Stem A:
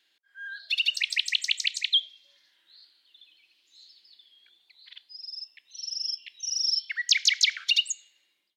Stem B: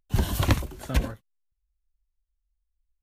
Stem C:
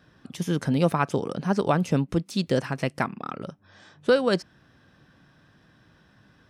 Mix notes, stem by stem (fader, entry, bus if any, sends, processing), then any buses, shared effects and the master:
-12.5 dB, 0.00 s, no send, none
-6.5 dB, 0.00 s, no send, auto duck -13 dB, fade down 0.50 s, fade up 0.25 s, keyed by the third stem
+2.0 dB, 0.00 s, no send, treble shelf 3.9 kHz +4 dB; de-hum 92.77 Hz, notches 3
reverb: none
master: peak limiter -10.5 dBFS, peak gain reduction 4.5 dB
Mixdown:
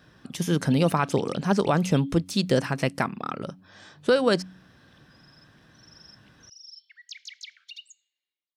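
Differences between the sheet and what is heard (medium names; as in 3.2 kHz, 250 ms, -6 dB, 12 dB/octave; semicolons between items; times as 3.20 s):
stem A -12.5 dB -> -20.5 dB; stem B: muted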